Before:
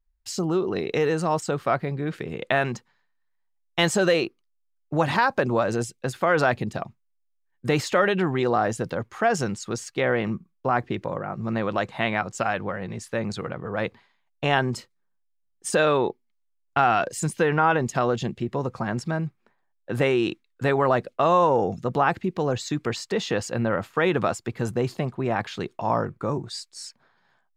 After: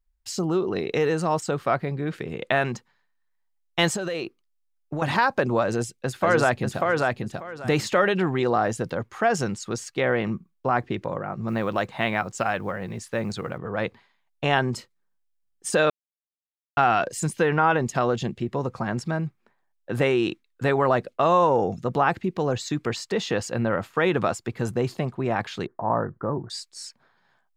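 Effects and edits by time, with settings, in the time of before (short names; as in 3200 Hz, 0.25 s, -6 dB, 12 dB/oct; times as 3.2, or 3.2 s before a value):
3.92–5.02 compressor, threshold -25 dBFS
5.63–6.81 echo throw 0.59 s, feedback 20%, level -2.5 dB
11.48–13.58 companded quantiser 8-bit
15.9–16.77 mute
25.66–26.5 elliptic low-pass 1800 Hz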